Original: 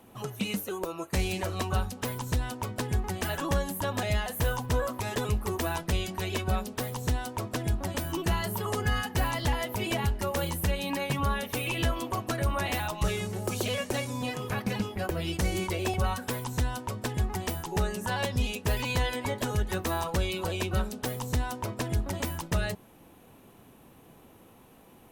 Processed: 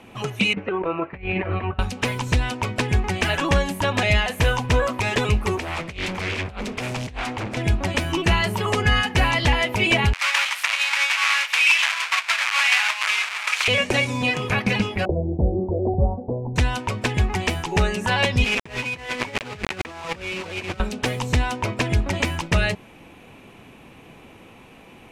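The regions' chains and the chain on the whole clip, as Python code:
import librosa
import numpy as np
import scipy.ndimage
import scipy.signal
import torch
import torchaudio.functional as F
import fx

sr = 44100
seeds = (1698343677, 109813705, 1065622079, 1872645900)

y = fx.chain(x, sr, fx.lowpass(hz=2200.0, slope=24),
    fx.over_compress(threshold_db=-34.0, ratio=-0.5), at=(0.53, 1.79))
y = fx.chain(y, sr, fx.over_compress(threshold_db=-33.0, ratio=-0.5),
    fx.clip_hard(threshold_db=-33.5),
    fx.doppler_dist(depth_ms=0.79), at=(5.57, 7.57))
y = fx.chain(y, sr, fx.halfwave_hold(),
    fx.highpass(hz=1100.0, slope=24), at=(10.13, 13.68))
y = fx.chain(y, sr, fx.steep_lowpass(hz=770.0, slope=48),
    fx.doubler(ms=14.0, db=-11), at=(15.05, 16.56))
y = fx.chain(y, sr, fx.bandpass_edges(low_hz=110.0, high_hz=2400.0),
    fx.quant_dither(seeds[0], bits=6, dither='none'),
    fx.over_compress(threshold_db=-38.0, ratio=-0.5), at=(18.44, 20.8))
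y = scipy.signal.sosfilt(scipy.signal.butter(2, 7100.0, 'lowpass', fs=sr, output='sos'), y)
y = fx.peak_eq(y, sr, hz=2400.0, db=10.5, octaves=0.65)
y = F.gain(torch.from_numpy(y), 8.0).numpy()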